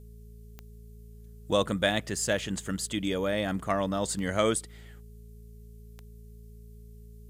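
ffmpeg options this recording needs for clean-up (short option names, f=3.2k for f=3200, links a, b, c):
-af "adeclick=t=4,bandreject=f=55.7:t=h:w=4,bandreject=f=111.4:t=h:w=4,bandreject=f=167.1:t=h:w=4,bandreject=f=222.8:t=h:w=4,bandreject=f=420:w=30,agate=range=-21dB:threshold=-40dB"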